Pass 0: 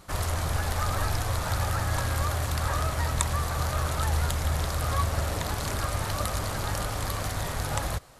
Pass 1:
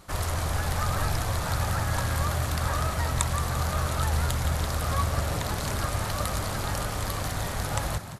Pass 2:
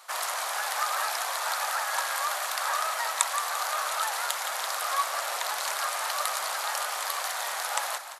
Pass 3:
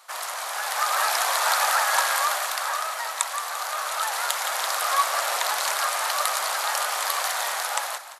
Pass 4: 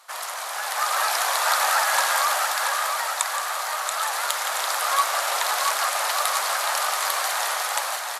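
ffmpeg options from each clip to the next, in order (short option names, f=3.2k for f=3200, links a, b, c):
-filter_complex "[0:a]asplit=6[a][b][c][d][e][f];[b]adelay=172,afreqshift=45,volume=-11dB[g];[c]adelay=344,afreqshift=90,volume=-17.6dB[h];[d]adelay=516,afreqshift=135,volume=-24.1dB[i];[e]adelay=688,afreqshift=180,volume=-30.7dB[j];[f]adelay=860,afreqshift=225,volume=-37.2dB[k];[a][g][h][i][j][k]amix=inputs=6:normalize=0"
-af "highpass=f=710:w=0.5412,highpass=f=710:w=1.3066,volume=3.5dB"
-af "dynaudnorm=f=190:g=9:m=9.5dB,volume=-1dB"
-af "aecho=1:1:681|1362|2043|2724|3405|4086:0.531|0.26|0.127|0.0625|0.0306|0.015" -ar 48000 -c:a libopus -b:a 64k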